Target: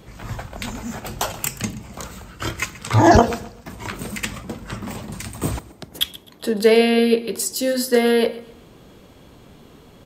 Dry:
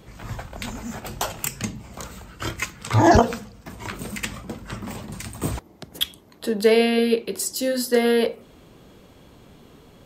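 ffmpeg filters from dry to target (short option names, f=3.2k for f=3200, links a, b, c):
-af "aecho=1:1:129|258|387:0.119|0.038|0.0122,volume=2.5dB"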